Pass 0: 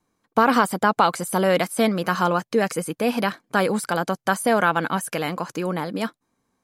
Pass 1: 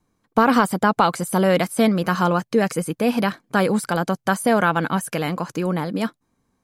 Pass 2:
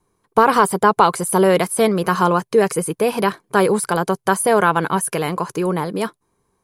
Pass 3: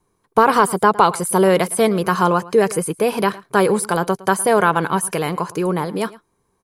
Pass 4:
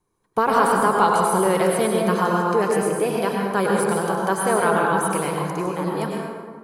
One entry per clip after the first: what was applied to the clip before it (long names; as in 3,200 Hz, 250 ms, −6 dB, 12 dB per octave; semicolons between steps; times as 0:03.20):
low-shelf EQ 180 Hz +10 dB
thirty-one-band graphic EQ 250 Hz −10 dB, 400 Hz +10 dB, 1,000 Hz +7 dB, 10,000 Hz +10 dB; level +1 dB
slap from a distant wall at 19 metres, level −20 dB
dense smooth reverb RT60 1.7 s, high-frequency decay 0.5×, pre-delay 85 ms, DRR −1.5 dB; level −7 dB